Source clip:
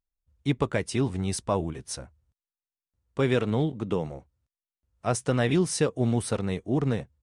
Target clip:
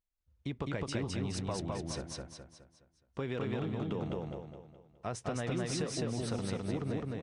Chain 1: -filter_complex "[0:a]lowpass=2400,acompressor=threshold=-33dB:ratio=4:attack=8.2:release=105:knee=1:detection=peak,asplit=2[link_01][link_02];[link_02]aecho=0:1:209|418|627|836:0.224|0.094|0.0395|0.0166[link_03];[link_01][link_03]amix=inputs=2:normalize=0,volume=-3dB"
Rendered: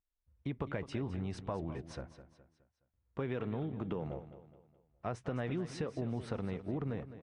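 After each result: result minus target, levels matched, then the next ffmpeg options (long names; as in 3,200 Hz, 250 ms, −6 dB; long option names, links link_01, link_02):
4,000 Hz band −8.5 dB; echo-to-direct −11.5 dB
-filter_complex "[0:a]lowpass=5500,acompressor=threshold=-33dB:ratio=4:attack=8.2:release=105:knee=1:detection=peak,asplit=2[link_01][link_02];[link_02]aecho=0:1:209|418|627|836:0.224|0.094|0.0395|0.0166[link_03];[link_01][link_03]amix=inputs=2:normalize=0,volume=-3dB"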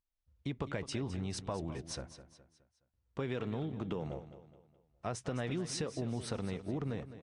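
echo-to-direct −11.5 dB
-filter_complex "[0:a]lowpass=5500,acompressor=threshold=-33dB:ratio=4:attack=8.2:release=105:knee=1:detection=peak,asplit=2[link_01][link_02];[link_02]aecho=0:1:209|418|627|836|1045|1254:0.841|0.353|0.148|0.0623|0.0262|0.011[link_03];[link_01][link_03]amix=inputs=2:normalize=0,volume=-3dB"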